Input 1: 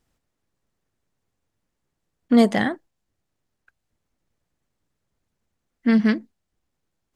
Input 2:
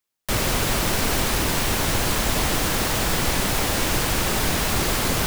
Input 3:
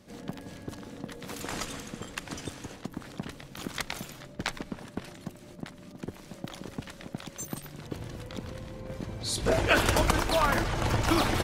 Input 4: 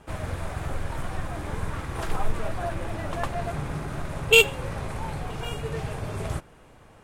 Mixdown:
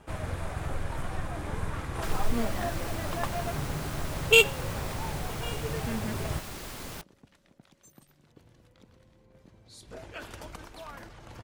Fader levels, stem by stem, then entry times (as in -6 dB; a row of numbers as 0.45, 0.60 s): -18.0, -18.5, -19.0, -2.5 dB; 0.00, 1.75, 0.45, 0.00 s